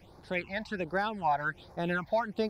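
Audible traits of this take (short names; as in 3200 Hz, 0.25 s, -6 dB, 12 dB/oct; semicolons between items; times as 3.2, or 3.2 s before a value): phasing stages 8, 1.3 Hz, lowest notch 360–2900 Hz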